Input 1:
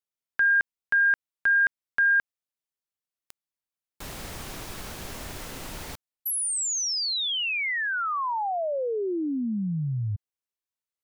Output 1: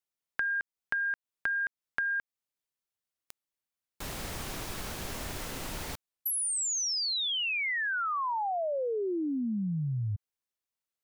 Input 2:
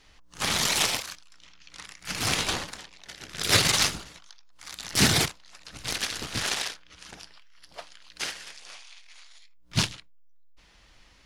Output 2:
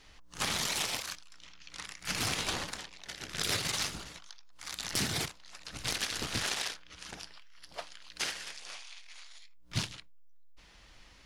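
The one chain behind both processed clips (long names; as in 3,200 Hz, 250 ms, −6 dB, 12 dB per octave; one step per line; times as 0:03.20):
downward compressor 12 to 1, threshold −29 dBFS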